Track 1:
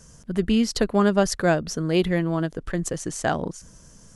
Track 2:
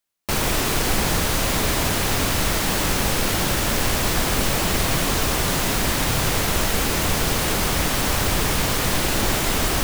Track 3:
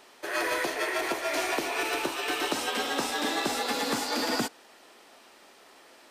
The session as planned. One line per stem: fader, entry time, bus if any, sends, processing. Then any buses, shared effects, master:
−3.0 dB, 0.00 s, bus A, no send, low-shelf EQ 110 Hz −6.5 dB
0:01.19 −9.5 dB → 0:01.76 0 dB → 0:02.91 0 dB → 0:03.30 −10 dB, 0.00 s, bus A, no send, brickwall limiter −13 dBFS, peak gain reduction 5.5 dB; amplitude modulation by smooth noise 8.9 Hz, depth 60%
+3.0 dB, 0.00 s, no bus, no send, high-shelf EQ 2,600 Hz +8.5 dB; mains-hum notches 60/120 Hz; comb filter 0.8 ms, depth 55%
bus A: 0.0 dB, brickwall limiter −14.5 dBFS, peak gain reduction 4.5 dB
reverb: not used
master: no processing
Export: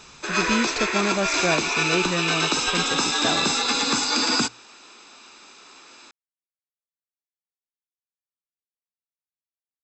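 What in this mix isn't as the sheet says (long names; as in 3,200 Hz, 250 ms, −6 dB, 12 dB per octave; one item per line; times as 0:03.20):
stem 2: muted
master: extra linear-phase brick-wall low-pass 8,100 Hz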